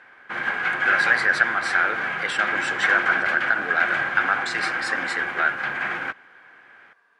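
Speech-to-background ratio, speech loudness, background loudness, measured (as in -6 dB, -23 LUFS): 1.0 dB, -23.5 LUFS, -24.5 LUFS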